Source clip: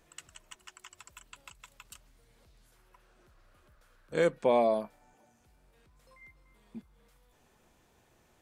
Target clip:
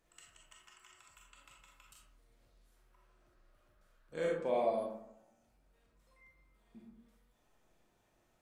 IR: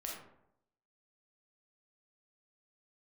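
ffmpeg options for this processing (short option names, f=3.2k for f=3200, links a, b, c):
-filter_complex "[1:a]atrim=start_sample=2205,asetrate=43659,aresample=44100[a];[0:a][a]afir=irnorm=-1:irlink=0,volume=-7dB"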